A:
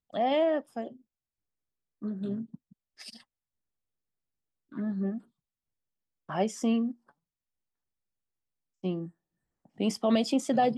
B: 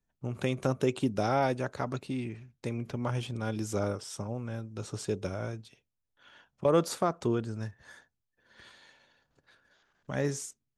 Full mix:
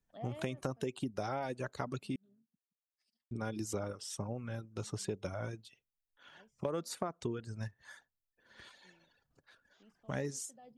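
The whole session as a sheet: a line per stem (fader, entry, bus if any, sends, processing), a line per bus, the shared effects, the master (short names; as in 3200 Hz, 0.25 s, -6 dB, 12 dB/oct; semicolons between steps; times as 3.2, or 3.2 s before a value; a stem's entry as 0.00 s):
-16.5 dB, 0.00 s, no send, de-esser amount 100%; auto duck -20 dB, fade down 1.55 s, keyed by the second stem
-0.5 dB, 0.00 s, muted 2.16–3.31, no send, reverb removal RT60 0.91 s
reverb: off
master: compressor 10:1, threshold -33 dBFS, peak gain reduction 13 dB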